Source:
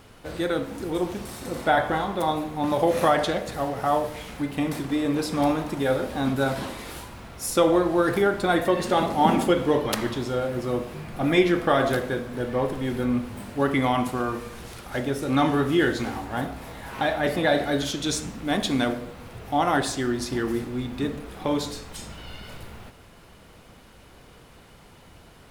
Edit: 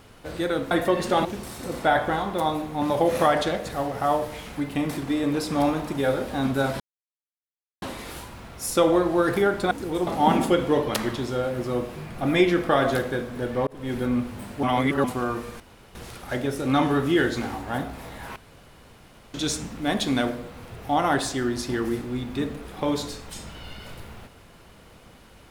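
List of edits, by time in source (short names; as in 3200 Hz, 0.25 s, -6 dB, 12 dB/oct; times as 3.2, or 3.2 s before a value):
0.71–1.07 swap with 8.51–9.05
6.62 insert silence 1.02 s
12.65–12.92 fade in
13.61–14.02 reverse
14.58 insert room tone 0.35 s
16.99–17.97 room tone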